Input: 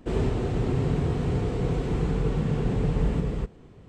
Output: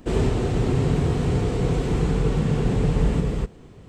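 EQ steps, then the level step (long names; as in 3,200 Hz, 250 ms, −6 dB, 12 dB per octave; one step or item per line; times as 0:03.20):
high-shelf EQ 4,800 Hz +7.5 dB
+4.0 dB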